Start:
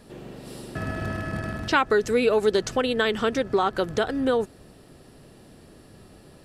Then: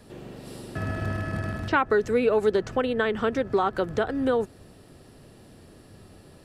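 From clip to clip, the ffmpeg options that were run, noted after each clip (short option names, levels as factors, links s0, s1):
-filter_complex "[0:a]equalizer=f=95:w=4.7:g=6,acrossover=split=270|2400[s0][s1][s2];[s2]acompressor=threshold=0.00501:ratio=4[s3];[s0][s1][s3]amix=inputs=3:normalize=0,volume=0.891"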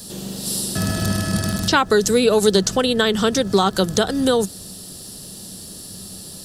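-af "equalizer=f=190:w=5.3:g=12.5,aexciter=amount=7.1:drive=7.2:freq=3400,volume=1.88"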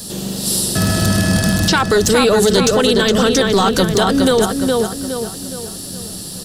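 -filter_complex "[0:a]asplit=2[s0][s1];[s1]adelay=415,lowpass=f=3900:p=1,volume=0.531,asplit=2[s2][s3];[s3]adelay=415,lowpass=f=3900:p=1,volume=0.44,asplit=2[s4][s5];[s5]adelay=415,lowpass=f=3900:p=1,volume=0.44,asplit=2[s6][s7];[s7]adelay=415,lowpass=f=3900:p=1,volume=0.44,asplit=2[s8][s9];[s9]adelay=415,lowpass=f=3900:p=1,volume=0.44[s10];[s0][s2][s4][s6][s8][s10]amix=inputs=6:normalize=0,apsyclip=5.01,volume=0.422"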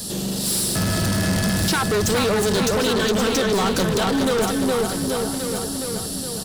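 -af "asoftclip=type=tanh:threshold=0.126,aecho=1:1:1128:0.376"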